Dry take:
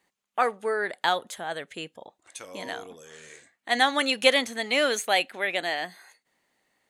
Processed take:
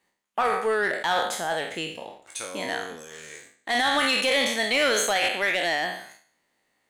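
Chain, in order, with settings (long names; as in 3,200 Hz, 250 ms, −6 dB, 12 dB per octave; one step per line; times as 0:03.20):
peak hold with a decay on every bin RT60 0.62 s
brickwall limiter −15 dBFS, peak gain reduction 11 dB
leveller curve on the samples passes 1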